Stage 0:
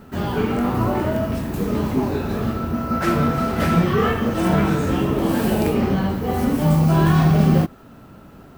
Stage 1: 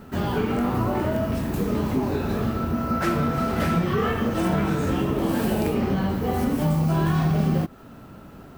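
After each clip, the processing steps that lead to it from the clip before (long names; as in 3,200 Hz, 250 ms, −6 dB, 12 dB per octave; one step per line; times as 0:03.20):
downward compressor 2.5 to 1, threshold −21 dBFS, peak gain reduction 7 dB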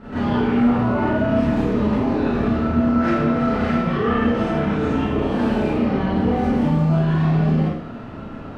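low-pass filter 3,300 Hz 12 dB per octave
brickwall limiter −23 dBFS, peak gain reduction 11 dB
four-comb reverb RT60 0.69 s, combs from 26 ms, DRR −10 dB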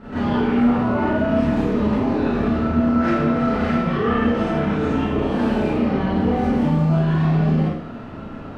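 mains-hum notches 60/120 Hz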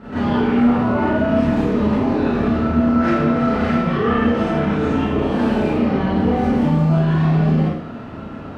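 high-pass filter 40 Hz
level +2 dB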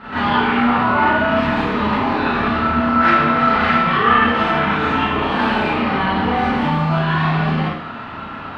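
flat-topped bell 1,900 Hz +13.5 dB 2.8 octaves
level −3.5 dB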